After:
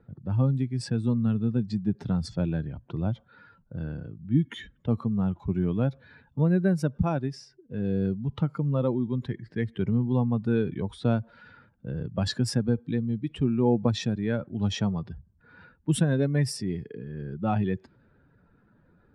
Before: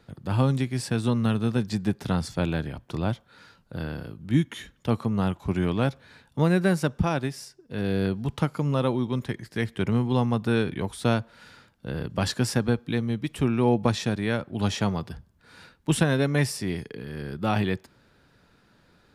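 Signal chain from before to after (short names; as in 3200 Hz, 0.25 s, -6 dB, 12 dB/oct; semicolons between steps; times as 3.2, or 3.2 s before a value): spectral contrast raised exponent 1.6; low-pass opened by the level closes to 1800 Hz, open at -21 dBFS; gain -1 dB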